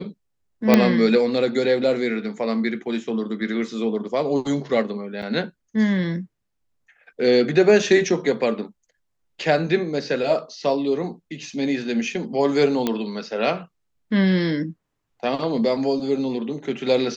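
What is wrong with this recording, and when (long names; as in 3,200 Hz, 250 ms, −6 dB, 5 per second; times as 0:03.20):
0:00.74: click −1 dBFS
0:05.22–0:05.23: drop-out 6.1 ms
0:12.87: click −8 dBFS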